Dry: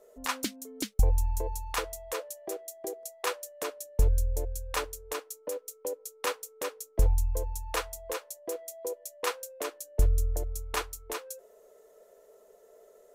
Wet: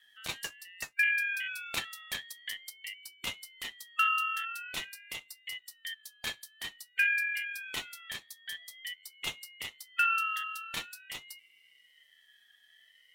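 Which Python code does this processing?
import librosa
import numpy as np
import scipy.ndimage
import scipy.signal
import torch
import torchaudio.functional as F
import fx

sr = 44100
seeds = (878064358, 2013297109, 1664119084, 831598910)

y = fx.band_swap(x, sr, width_hz=2000)
y = fx.transient(y, sr, attack_db=5, sustain_db=1, at=(1.65, 2.74), fade=0.02)
y = fx.ring_lfo(y, sr, carrier_hz=550.0, swing_pct=35, hz=0.48)
y = y * 10.0 ** (-3.0 / 20.0)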